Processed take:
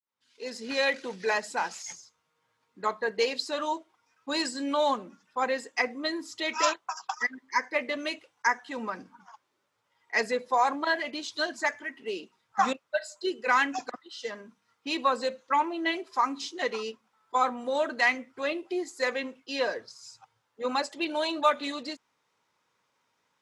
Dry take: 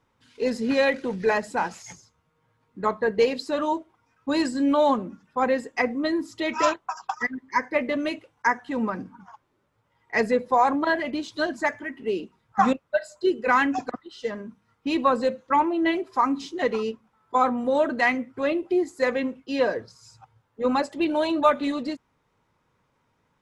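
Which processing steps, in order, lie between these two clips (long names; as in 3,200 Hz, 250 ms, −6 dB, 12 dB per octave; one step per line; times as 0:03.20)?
fade in at the beginning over 0.91 s
high-pass filter 600 Hz 6 dB per octave
parametric band 5,500 Hz +7.5 dB 1.9 octaves
level −3 dB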